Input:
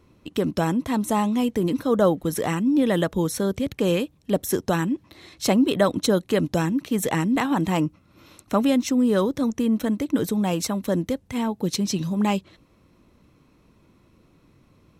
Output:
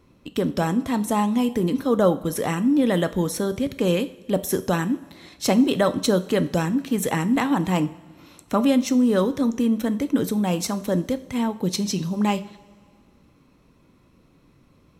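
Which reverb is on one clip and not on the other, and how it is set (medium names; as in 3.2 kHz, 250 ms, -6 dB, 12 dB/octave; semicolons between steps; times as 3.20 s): two-slope reverb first 0.44 s, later 2 s, from -16 dB, DRR 11 dB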